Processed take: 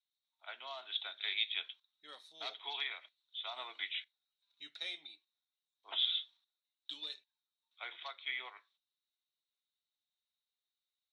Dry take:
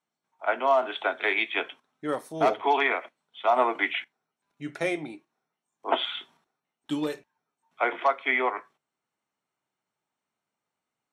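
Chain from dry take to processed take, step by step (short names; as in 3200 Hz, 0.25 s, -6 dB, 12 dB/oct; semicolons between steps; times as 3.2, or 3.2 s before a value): band-pass 3800 Hz, Q 15; 2.4–4.69 three-band squash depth 40%; gain +10.5 dB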